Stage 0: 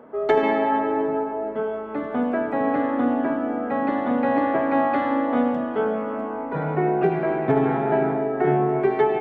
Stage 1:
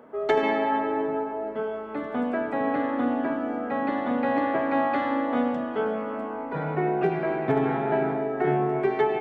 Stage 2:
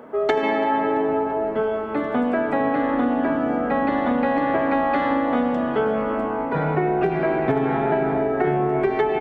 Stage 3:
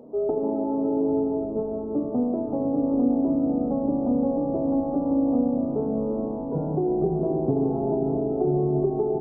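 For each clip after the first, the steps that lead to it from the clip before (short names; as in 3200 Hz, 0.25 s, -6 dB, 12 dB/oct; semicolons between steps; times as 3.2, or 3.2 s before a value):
high shelf 2600 Hz +8 dB; gain -4 dB
compressor, threshold -25 dBFS, peak gain reduction 8 dB; frequency-shifting echo 0.336 s, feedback 53%, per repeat -100 Hz, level -20 dB; gain +8 dB
Gaussian blur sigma 14 samples; reverb RT60 2.5 s, pre-delay 5 ms, DRR 8.5 dB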